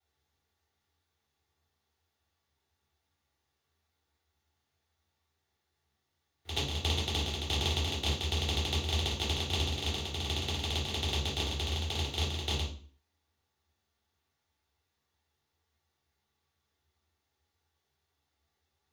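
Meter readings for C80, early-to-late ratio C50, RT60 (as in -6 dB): 11.0 dB, 5.0 dB, 0.45 s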